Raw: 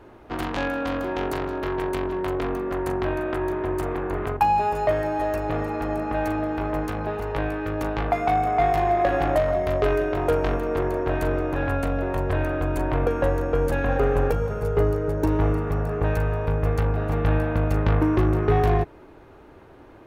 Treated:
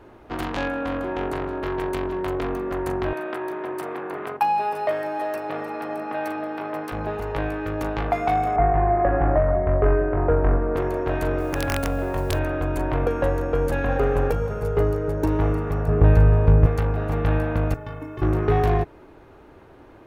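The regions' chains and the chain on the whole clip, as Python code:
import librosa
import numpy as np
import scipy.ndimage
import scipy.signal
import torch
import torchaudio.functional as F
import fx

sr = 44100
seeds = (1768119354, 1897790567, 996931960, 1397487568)

y = fx.chain(x, sr, fx.lowpass(hz=10000.0, slope=12),
    fx.peak_eq(hz=5400.0, db=-7.5, octaves=1.4), at=(0.69, 1.64))
y = fx.chain(y, sr, fx.highpass(hz=140.0, slope=24),
    fx.low_shelf(hz=310.0, db=-9.5),
    fx.notch(hz=6800.0, q=6.1), at=(3.13, 6.92))
y = fx.chain(y, sr, fx.lowpass(hz=1800.0, slope=24),
    fx.low_shelf(hz=120.0, db=9.5), at=(8.56, 10.76))
y = fx.chain(y, sr, fx.overflow_wrap(gain_db=14.0),
    fx.mod_noise(seeds[0], snr_db=31), at=(11.39, 12.39))
y = fx.chain(y, sr, fx.lowpass(hz=3700.0, slope=6),
    fx.low_shelf(hz=360.0, db=10.5), at=(15.88, 16.66))
y = fx.chain(y, sr, fx.notch(hz=4400.0, q=5.6),
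    fx.stiff_resonator(f0_hz=130.0, decay_s=0.25, stiffness=0.03),
    fx.quant_dither(seeds[1], bits=12, dither='none'), at=(17.74, 18.22))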